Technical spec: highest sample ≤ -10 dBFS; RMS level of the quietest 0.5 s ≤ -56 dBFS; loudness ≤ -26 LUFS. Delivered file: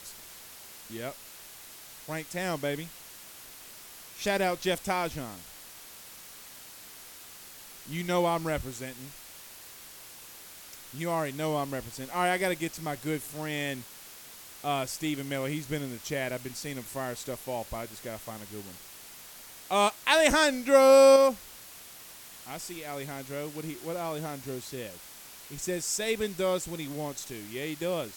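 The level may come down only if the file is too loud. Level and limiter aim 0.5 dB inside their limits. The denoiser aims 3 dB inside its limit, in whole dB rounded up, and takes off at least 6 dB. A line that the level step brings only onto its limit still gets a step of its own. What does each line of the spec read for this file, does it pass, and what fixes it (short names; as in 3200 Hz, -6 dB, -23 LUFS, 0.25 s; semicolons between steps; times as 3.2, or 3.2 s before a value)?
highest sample -7.5 dBFS: fail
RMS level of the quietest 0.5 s -48 dBFS: fail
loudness -29.0 LUFS: OK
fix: denoiser 11 dB, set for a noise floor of -48 dBFS; limiter -10.5 dBFS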